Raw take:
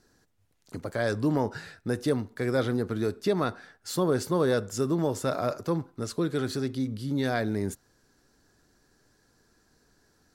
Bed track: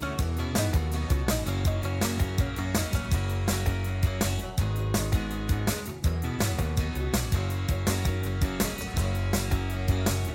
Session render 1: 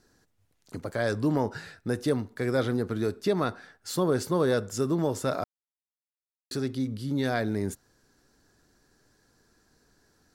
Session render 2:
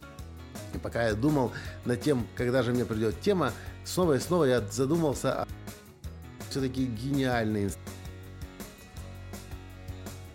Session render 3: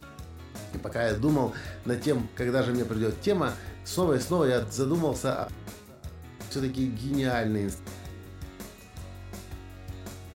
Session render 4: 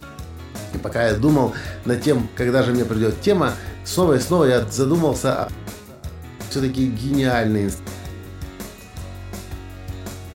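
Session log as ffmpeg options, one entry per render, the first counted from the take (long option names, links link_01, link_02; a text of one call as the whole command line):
ffmpeg -i in.wav -filter_complex "[0:a]asplit=3[link_01][link_02][link_03];[link_01]atrim=end=5.44,asetpts=PTS-STARTPTS,afade=type=out:start_time=5.436:duration=0.004:curve=hsin[link_04];[link_02]atrim=start=5.44:end=6.51,asetpts=PTS-STARTPTS,volume=0[link_05];[link_03]atrim=start=6.51,asetpts=PTS-STARTPTS,afade=type=in:duration=0.004:curve=hsin[link_06];[link_04][link_05][link_06]concat=n=3:v=0:a=1" out.wav
ffmpeg -i in.wav -i bed.wav -filter_complex "[1:a]volume=-15.5dB[link_01];[0:a][link_01]amix=inputs=2:normalize=0" out.wav
ffmpeg -i in.wav -filter_complex "[0:a]asplit=2[link_01][link_02];[link_02]adelay=46,volume=-9.5dB[link_03];[link_01][link_03]amix=inputs=2:normalize=0,asplit=2[link_04][link_05];[link_05]adelay=641.4,volume=-26dB,highshelf=frequency=4000:gain=-14.4[link_06];[link_04][link_06]amix=inputs=2:normalize=0" out.wav
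ffmpeg -i in.wav -af "volume=8.5dB" out.wav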